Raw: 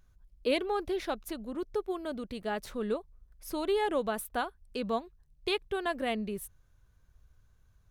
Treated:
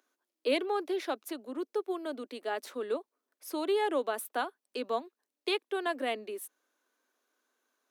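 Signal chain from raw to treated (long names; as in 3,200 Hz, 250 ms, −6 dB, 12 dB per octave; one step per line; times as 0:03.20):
Butterworth high-pass 250 Hz 72 dB per octave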